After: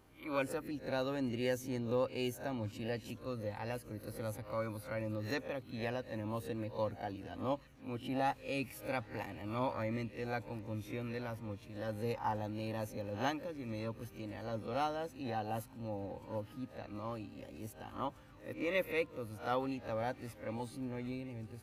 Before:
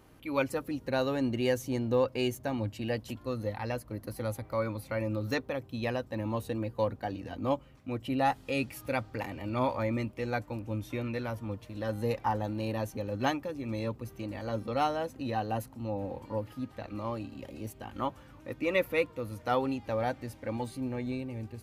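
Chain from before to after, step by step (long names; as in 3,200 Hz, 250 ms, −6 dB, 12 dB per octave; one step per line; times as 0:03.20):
peak hold with a rise ahead of every peak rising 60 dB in 0.30 s
delay with a high-pass on its return 765 ms, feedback 84%, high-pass 1,500 Hz, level −23 dB
level −7 dB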